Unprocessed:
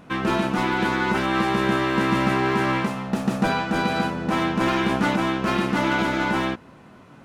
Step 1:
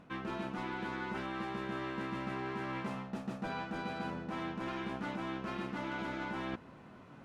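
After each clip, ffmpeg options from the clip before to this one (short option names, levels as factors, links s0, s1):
-af "highshelf=f=7400:g=-11,areverse,acompressor=threshold=0.0316:ratio=6,areverse,volume=0.473"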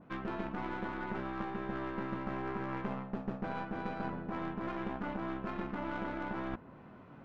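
-af "aeval=exprs='0.0501*(cos(1*acos(clip(val(0)/0.0501,-1,1)))-cos(1*PI/2))+0.0251*(cos(2*acos(clip(val(0)/0.0501,-1,1)))-cos(2*PI/2))':c=same,adynamicsmooth=sensitivity=3.5:basefreq=3000,adynamicequalizer=threshold=0.00158:dfrequency=1900:dqfactor=0.7:tfrequency=1900:tqfactor=0.7:attack=5:release=100:ratio=0.375:range=2.5:mode=cutabove:tftype=highshelf,volume=1.12"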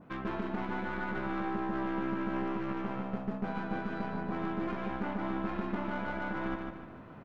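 -af "alimiter=level_in=1.58:limit=0.0631:level=0:latency=1:release=76,volume=0.631,aecho=1:1:149|298|447|596|745:0.631|0.252|0.101|0.0404|0.0162,volume=1.33"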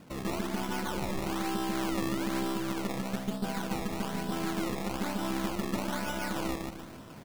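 -af "acrusher=samples=20:mix=1:aa=0.000001:lfo=1:lforange=20:lforate=1.1,volume=1.26"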